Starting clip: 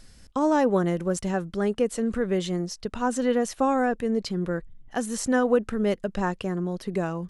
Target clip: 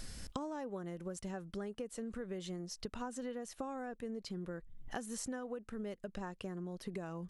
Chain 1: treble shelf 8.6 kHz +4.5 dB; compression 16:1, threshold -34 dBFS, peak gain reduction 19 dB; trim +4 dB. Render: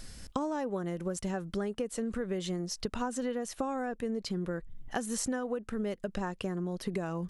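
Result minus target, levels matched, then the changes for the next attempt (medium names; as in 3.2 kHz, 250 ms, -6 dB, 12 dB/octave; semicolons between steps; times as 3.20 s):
compression: peak gain reduction -8.5 dB
change: compression 16:1, threshold -43 dBFS, peak gain reduction 27.5 dB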